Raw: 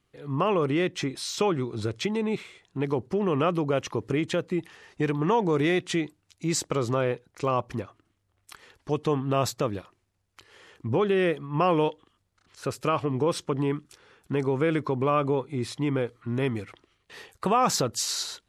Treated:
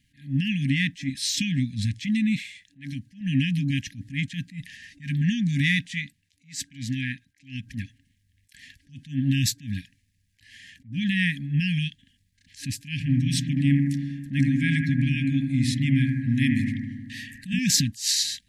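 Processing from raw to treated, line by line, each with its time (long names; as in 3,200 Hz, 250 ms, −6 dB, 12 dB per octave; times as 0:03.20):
0:02.39–0:03.21: low-shelf EQ 450 Hz −8 dB
0:05.93–0:07.63: bass and treble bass −7 dB, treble −4 dB
0:12.92–0:17.59: bucket-brigade delay 78 ms, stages 1,024, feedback 73%, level −4 dB
whole clip: brick-wall band-stop 290–1,600 Hz; level that may rise only so fast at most 190 dB per second; level +7 dB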